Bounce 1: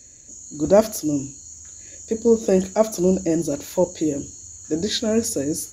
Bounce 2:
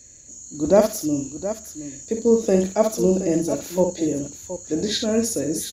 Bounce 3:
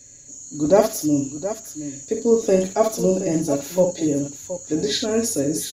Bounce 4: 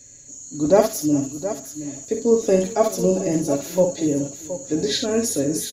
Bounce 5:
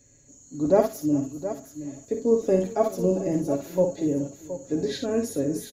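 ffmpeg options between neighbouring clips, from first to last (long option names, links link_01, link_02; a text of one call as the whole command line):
ffmpeg -i in.wav -af "aecho=1:1:57|720:0.447|0.266,volume=-1dB" out.wav
ffmpeg -i in.wav -af "aecho=1:1:7.2:0.65" out.wav
ffmpeg -i in.wav -af "aecho=1:1:396|792|1188:0.0944|0.0434|0.02" out.wav
ffmpeg -i in.wav -af "equalizer=frequency=6500:width=0.35:gain=-10.5,volume=-3.5dB" out.wav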